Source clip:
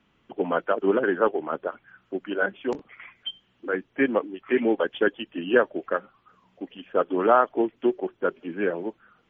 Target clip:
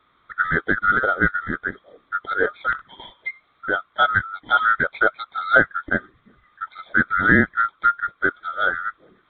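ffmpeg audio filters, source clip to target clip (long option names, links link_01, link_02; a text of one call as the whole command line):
ffmpeg -i in.wav -af "afftfilt=real='real(if(lt(b,960),b+48*(1-2*mod(floor(b/48),2)),b),0)':imag='imag(if(lt(b,960),b+48*(1-2*mod(floor(b/48),2)),b),0)':win_size=2048:overlap=0.75,aresample=8000,aresample=44100,adynamicequalizer=threshold=0.02:dfrequency=1800:dqfactor=2.2:tfrequency=1800:tqfactor=2.2:attack=5:release=100:ratio=0.375:range=2.5:mode=cutabove:tftype=bell,volume=4.5dB" out.wav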